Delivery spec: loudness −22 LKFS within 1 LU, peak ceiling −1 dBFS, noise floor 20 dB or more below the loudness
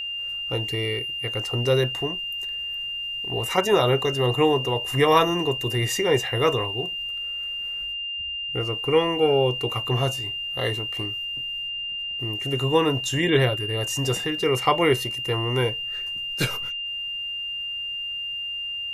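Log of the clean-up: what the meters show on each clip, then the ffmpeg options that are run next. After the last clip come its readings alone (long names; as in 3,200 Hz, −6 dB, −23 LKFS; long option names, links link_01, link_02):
interfering tone 2,800 Hz; level of the tone −28 dBFS; integrated loudness −24.0 LKFS; sample peak −4.0 dBFS; target loudness −22.0 LKFS
→ -af "bandreject=frequency=2800:width=30"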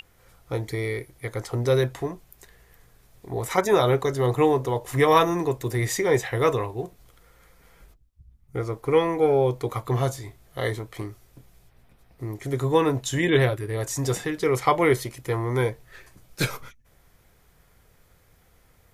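interfering tone none found; integrated loudness −24.5 LKFS; sample peak −4.5 dBFS; target loudness −22.0 LKFS
→ -af "volume=2.5dB"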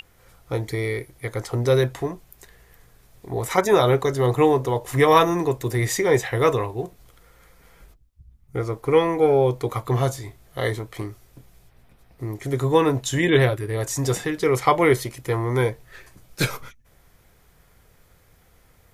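integrated loudness −22.0 LKFS; sample peak −2.0 dBFS; background noise floor −57 dBFS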